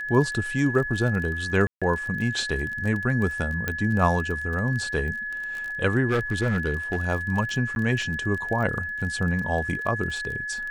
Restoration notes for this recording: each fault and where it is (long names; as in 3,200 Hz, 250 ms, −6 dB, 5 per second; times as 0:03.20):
surface crackle 26 per second −30 dBFS
whistle 1,700 Hz −29 dBFS
0:01.67–0:01.82: drop-out 146 ms
0:03.68: click −12 dBFS
0:06.09–0:06.96: clipping −18.5 dBFS
0:07.75–0:07.76: drop-out 11 ms